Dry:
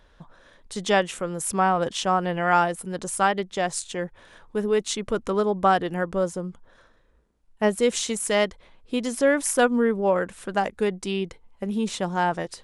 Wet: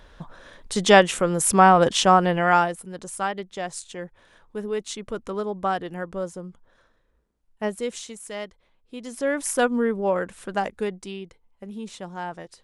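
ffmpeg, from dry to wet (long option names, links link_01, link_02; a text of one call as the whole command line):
ffmpeg -i in.wav -af "volume=17.5dB,afade=type=out:start_time=2.05:duration=0.8:silence=0.237137,afade=type=out:start_time=7.66:duration=0.48:silence=0.473151,afade=type=in:start_time=8.95:duration=0.59:silence=0.298538,afade=type=out:start_time=10.68:duration=0.52:silence=0.398107" out.wav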